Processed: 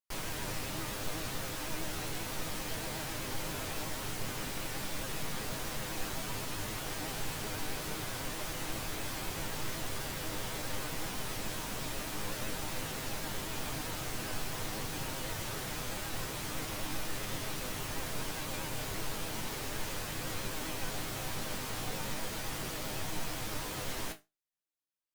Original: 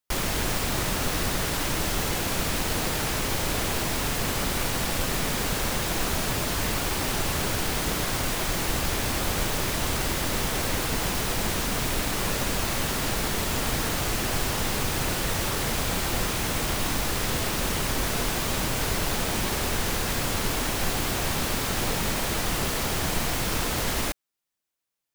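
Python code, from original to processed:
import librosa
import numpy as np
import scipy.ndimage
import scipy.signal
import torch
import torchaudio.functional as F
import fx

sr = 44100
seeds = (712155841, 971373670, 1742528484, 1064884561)

y = fx.resonator_bank(x, sr, root=44, chord='major', decay_s=0.22)
y = fx.vibrato(y, sr, rate_hz=7.8, depth_cents=73.0)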